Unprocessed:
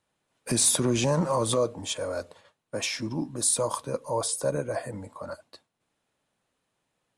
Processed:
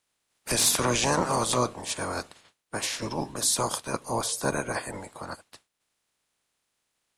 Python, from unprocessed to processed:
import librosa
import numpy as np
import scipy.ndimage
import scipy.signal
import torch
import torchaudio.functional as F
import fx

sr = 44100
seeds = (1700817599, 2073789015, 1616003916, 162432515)

y = fx.spec_clip(x, sr, under_db=20)